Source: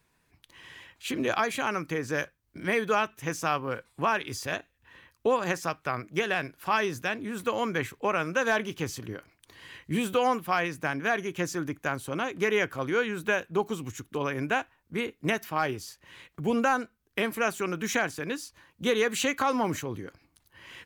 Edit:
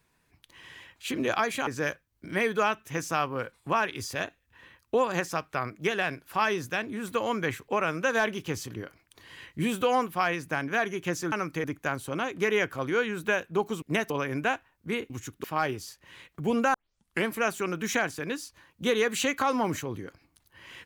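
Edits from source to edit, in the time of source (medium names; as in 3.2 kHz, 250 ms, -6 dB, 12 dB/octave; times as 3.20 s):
1.67–1.99 s: move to 11.64 s
13.82–14.16 s: swap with 15.16–15.44 s
16.74 s: tape start 0.52 s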